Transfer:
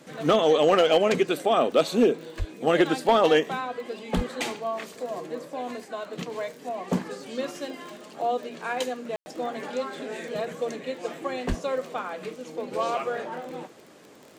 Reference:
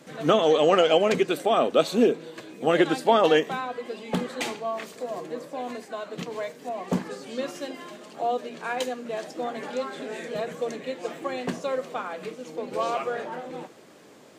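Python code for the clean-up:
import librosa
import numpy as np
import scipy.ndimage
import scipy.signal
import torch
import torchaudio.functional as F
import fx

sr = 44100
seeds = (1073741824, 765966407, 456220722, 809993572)

y = fx.fix_declip(x, sr, threshold_db=-11.5)
y = fx.fix_declick_ar(y, sr, threshold=6.5)
y = fx.fix_deplosive(y, sr, at_s=(2.38, 4.15, 11.48))
y = fx.fix_ambience(y, sr, seeds[0], print_start_s=13.84, print_end_s=14.34, start_s=9.16, end_s=9.26)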